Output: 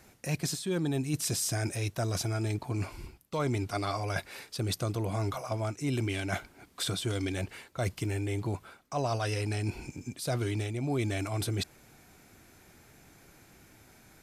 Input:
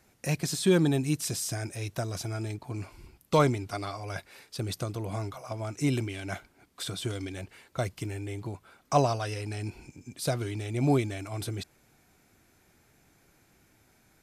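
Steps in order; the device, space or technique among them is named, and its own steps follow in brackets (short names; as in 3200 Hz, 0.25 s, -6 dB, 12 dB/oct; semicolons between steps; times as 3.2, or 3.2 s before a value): compression on the reversed sound (reverse; compressor 12:1, threshold -34 dBFS, peak gain reduction 17 dB; reverse); gain +6.5 dB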